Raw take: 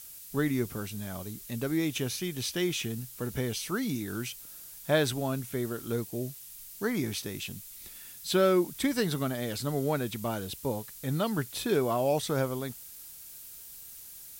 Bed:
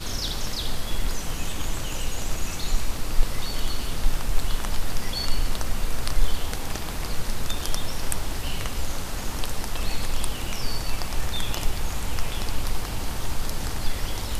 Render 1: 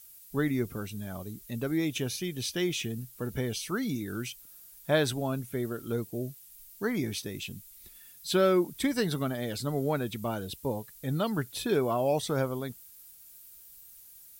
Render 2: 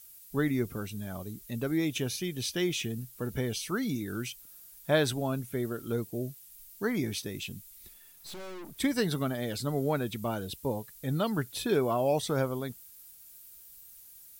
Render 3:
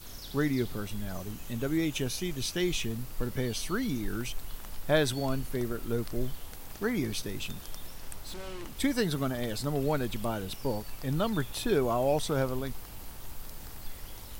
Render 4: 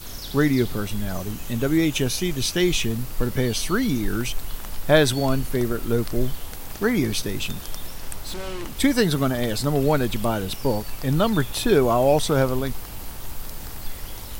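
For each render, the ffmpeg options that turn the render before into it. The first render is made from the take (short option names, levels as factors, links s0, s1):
-af "afftdn=nr=9:nf=-47"
-filter_complex "[0:a]asettb=1/sr,asplit=3[s0][s1][s2];[s0]atrim=end=7.944[s3];[s1]atrim=start=7.94:end=8.78,asetpts=PTS-STARTPTS,afade=t=in:d=0.004:c=qsin,afade=t=out:st=0.836:d=0.004:c=qsin,aeval=exprs='(tanh(126*val(0)+0.6)-tanh(0.6))/126':c=same[s4];[s2]atrim=start=8.776[s5];[s3][s4]acrossfade=d=0.004:c1=hsin:c2=qsin[s6];[s6][s5]acrossfade=d=0.004:c1=qsin:c2=hsin"
-filter_complex "[1:a]volume=0.158[s0];[0:a][s0]amix=inputs=2:normalize=0"
-af "volume=2.82"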